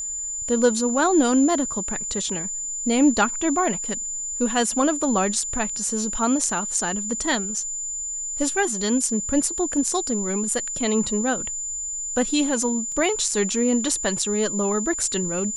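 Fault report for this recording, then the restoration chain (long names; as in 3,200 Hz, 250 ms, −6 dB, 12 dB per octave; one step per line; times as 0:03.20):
whistle 7,100 Hz −27 dBFS
0:12.92: drop-out 2.2 ms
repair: notch filter 7,100 Hz, Q 30
repair the gap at 0:12.92, 2.2 ms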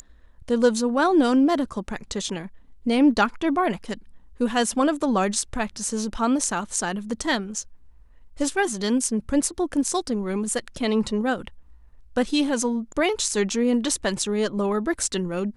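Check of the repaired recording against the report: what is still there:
none of them is left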